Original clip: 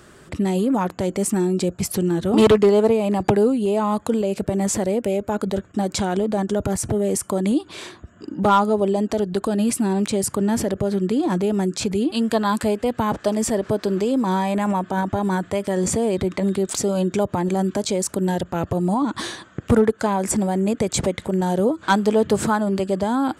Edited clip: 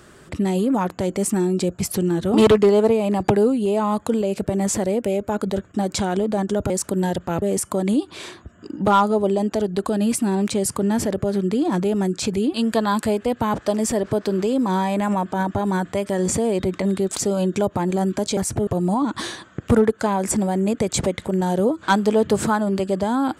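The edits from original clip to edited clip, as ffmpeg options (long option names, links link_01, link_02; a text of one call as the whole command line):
ffmpeg -i in.wav -filter_complex "[0:a]asplit=5[link_01][link_02][link_03][link_04][link_05];[link_01]atrim=end=6.702[link_06];[link_02]atrim=start=17.948:end=18.672[link_07];[link_03]atrim=start=6.998:end=17.952[link_08];[link_04]atrim=start=6.698:end=7.002[link_09];[link_05]atrim=start=18.668[link_10];[link_06][link_07]acrossfade=duration=0.004:curve1=hsin:curve2=hsin[link_11];[link_11][link_08]acrossfade=duration=0.004:curve1=hsin:curve2=hsin[link_12];[link_12][link_09]acrossfade=duration=0.004:curve1=hsin:curve2=hsin[link_13];[link_13][link_10]acrossfade=duration=0.004:curve1=hsin:curve2=hsin" out.wav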